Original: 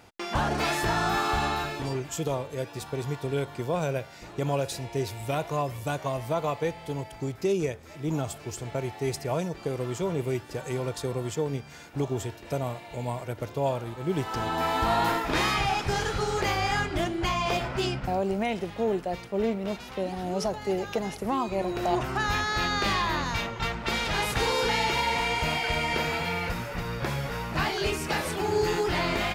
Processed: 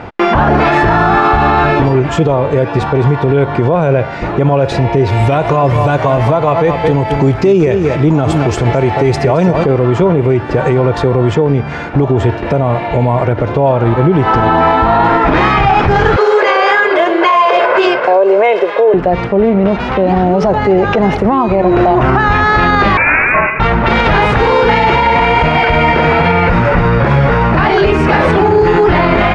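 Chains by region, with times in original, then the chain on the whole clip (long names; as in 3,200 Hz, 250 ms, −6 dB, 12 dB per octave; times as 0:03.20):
0:05.12–0:09.64: high-shelf EQ 3,800 Hz +9 dB + single-tap delay 221 ms −11.5 dB
0:16.16–0:18.94: Chebyshev high-pass filter 420 Hz, order 3 + comb filter 1.9 ms, depth 54%
0:22.97–0:23.60: variable-slope delta modulation 32 kbit/s + Butterworth high-pass 820 Hz + voice inversion scrambler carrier 3,400 Hz
whole clip: low-pass filter 1,800 Hz 12 dB per octave; downward compressor, threshold −29 dBFS; boost into a limiter +28.5 dB; level −1 dB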